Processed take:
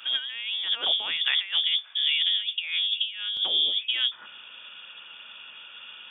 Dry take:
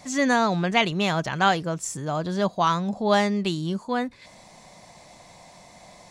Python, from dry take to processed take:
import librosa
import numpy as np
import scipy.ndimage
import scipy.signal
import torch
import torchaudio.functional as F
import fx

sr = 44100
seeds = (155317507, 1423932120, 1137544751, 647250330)

y = fx.octave_divider(x, sr, octaves=1, level_db=-1.0)
y = fx.freq_invert(y, sr, carrier_hz=3500)
y = fx.highpass(y, sr, hz=fx.steps((0.0, 350.0), (1.17, 1200.0), (3.37, 280.0)), slope=12)
y = fx.over_compress(y, sr, threshold_db=-26.0, ratio=-0.5)